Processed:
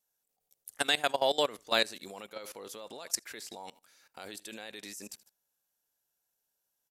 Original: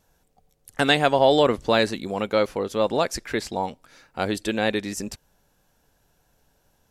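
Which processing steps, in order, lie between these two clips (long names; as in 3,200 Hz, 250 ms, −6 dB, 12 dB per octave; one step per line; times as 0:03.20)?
RIAA equalisation recording
repeating echo 77 ms, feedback 36%, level −22.5 dB
output level in coarse steps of 19 dB
level −6.5 dB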